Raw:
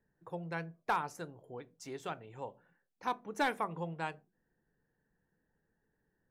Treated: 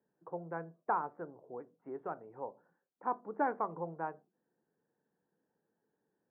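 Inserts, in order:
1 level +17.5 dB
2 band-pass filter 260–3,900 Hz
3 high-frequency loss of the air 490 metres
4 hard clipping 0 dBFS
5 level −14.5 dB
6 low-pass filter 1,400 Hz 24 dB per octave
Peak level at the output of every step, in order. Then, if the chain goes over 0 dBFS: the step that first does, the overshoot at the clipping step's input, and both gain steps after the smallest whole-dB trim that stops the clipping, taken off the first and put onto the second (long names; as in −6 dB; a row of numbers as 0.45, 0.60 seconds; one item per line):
−5.5, −2.5, −5.0, −5.0, −19.5, −20.5 dBFS
no step passes full scale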